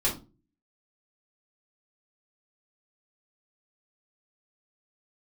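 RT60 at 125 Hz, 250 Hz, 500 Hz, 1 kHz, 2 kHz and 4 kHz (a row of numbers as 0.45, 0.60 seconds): 0.55, 0.50, 0.40, 0.30, 0.20, 0.25 seconds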